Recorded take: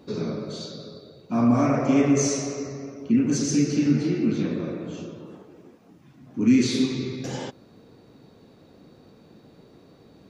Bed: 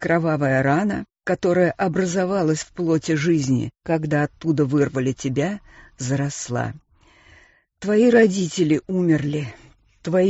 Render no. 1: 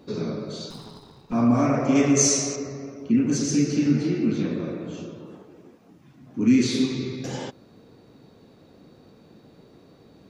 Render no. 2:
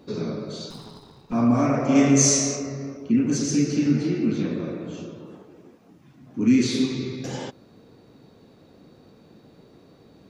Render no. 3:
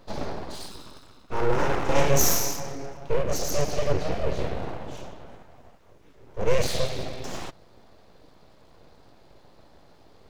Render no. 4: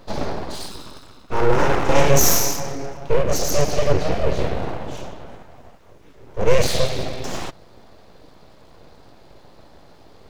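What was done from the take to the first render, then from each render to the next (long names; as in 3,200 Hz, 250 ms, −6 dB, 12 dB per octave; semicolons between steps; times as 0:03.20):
0:00.70–0:01.33: lower of the sound and its delayed copy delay 0.77 ms; 0:01.95–0:02.56: high-shelf EQ 3,800 Hz +11 dB
0:01.86–0:02.97: flutter between parallel walls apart 5 metres, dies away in 0.31 s
full-wave rectification
level +6.5 dB; brickwall limiter −2 dBFS, peak gain reduction 2.5 dB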